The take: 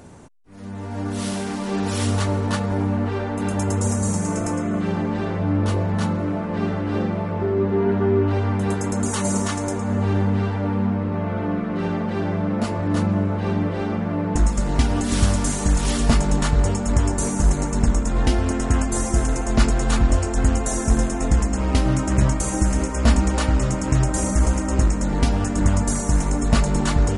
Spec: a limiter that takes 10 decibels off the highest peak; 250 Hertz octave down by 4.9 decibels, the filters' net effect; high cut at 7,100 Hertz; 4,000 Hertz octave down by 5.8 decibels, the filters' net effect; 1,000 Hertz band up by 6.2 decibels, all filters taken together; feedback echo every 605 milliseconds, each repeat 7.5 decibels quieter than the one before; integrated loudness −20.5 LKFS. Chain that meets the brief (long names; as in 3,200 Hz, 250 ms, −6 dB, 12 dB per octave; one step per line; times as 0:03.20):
low-pass filter 7,100 Hz
parametric band 250 Hz −7 dB
parametric band 1,000 Hz +8.5 dB
parametric band 4,000 Hz −8 dB
brickwall limiter −12.5 dBFS
repeating echo 605 ms, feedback 42%, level −7.5 dB
level +2.5 dB